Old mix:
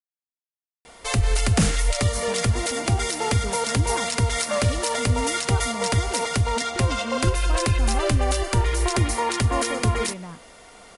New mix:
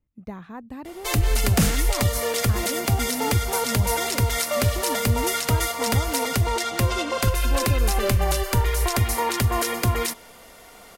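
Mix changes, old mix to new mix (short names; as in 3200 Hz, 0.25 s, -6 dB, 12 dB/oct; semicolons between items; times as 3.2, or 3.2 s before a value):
speech: entry -2.00 s; master: remove brick-wall FIR low-pass 11000 Hz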